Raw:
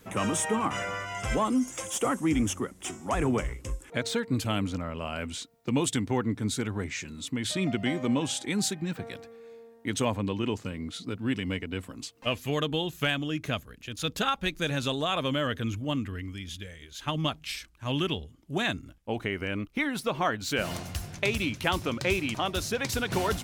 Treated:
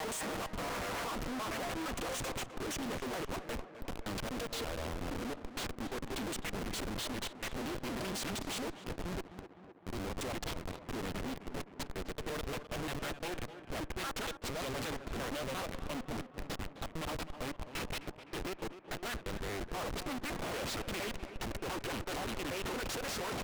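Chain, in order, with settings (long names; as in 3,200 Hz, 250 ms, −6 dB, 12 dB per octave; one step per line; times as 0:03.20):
slices reordered back to front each 116 ms, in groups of 5
high-pass filter 370 Hz 12 dB per octave
in parallel at −9 dB: soft clipping −27 dBFS, distortion −11 dB
on the sum: harmonic generator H 5 −36 dB, 7 −26 dB, 8 −40 dB, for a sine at −9.5 dBFS
comparator with hysteresis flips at −36.5 dBFS
on a send: tape delay 257 ms, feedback 73%, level −10 dB, low-pass 2,400 Hz
on the sum: highs frequency-modulated by the lows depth 0.94 ms
level −4.5 dB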